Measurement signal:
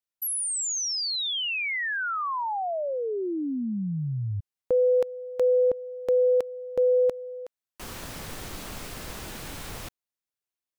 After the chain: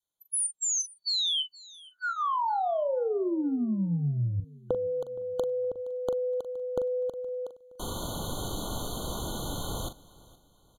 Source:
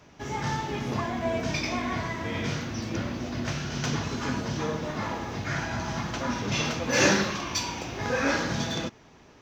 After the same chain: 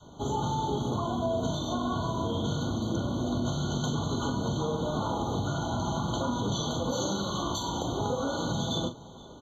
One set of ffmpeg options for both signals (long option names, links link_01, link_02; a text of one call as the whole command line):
ffmpeg -i in.wav -filter_complex "[0:a]bandreject=frequency=1300:width=5.3,adynamicequalizer=threshold=0.0224:dfrequency=380:dqfactor=0.78:tfrequency=380:tqfactor=0.78:attack=5:release=100:ratio=0.375:range=2:mode=cutabove:tftype=bell,acompressor=threshold=-32dB:ratio=6:attack=19:release=124:knee=1:detection=rms,asplit=2[link_01][link_02];[link_02]adelay=41,volume=-10dB[link_03];[link_01][link_03]amix=inputs=2:normalize=0,aecho=1:1:469|938|1407:0.0794|0.0326|0.0134,aresample=32000,aresample=44100,afftfilt=real='re*eq(mod(floor(b*sr/1024/1500),2),0)':imag='im*eq(mod(floor(b*sr/1024/1500),2),0)':win_size=1024:overlap=0.75,volume=5dB" out.wav